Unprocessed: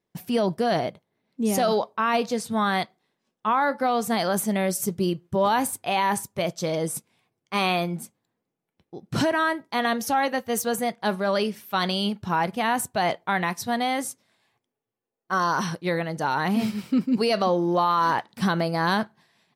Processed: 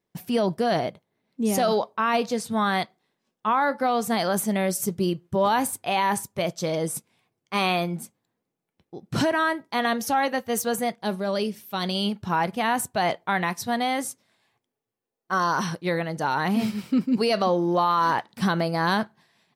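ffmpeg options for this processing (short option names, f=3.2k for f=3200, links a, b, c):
-filter_complex "[0:a]asettb=1/sr,asplit=3[a][b][c];[a]atrim=end=10.964[d];[b]atrim=start=10.96:end=11.95,asetpts=PTS-STARTPTS,afade=t=in:d=0.004:c=qsin,afade=t=out:st=0.986:d=0.004:c=qsin,equalizer=f=1.4k:w=0.66:g=-7[e];[c]atrim=start=11.946[f];[d][e]acrossfade=d=0.004:c1=hsin:c2=qsin[g];[g][f]acrossfade=d=0.004:c1=qsin:c2=hsin"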